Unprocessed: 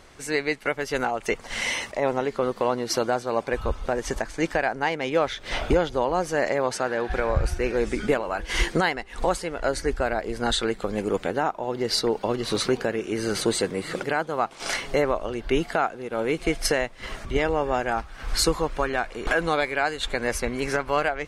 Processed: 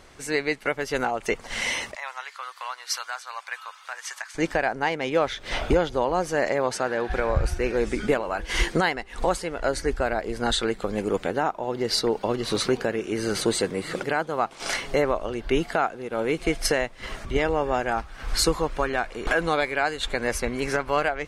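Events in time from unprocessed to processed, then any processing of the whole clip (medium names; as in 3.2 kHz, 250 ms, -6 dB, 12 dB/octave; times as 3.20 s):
1.95–4.35 s: high-pass 1.1 kHz 24 dB/octave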